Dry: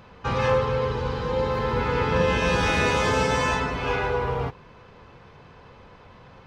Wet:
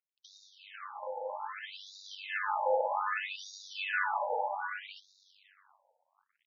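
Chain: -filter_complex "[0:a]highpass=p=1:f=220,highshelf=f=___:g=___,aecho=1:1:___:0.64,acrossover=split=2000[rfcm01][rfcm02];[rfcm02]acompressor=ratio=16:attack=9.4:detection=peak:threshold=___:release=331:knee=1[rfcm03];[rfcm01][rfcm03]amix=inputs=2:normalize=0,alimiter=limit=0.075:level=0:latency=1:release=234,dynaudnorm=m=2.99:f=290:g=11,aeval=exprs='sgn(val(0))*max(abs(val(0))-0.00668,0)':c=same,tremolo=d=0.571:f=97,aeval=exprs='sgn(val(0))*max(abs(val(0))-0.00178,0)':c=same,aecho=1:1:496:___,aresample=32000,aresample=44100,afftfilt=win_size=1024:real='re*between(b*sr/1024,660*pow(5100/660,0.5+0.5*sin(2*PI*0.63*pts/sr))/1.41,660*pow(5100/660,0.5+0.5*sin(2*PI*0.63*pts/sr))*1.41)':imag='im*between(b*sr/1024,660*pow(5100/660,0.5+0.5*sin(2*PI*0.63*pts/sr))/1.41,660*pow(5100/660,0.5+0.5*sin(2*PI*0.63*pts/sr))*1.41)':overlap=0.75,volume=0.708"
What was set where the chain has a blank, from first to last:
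6.3k, 11, 3.5, 0.0126, 0.708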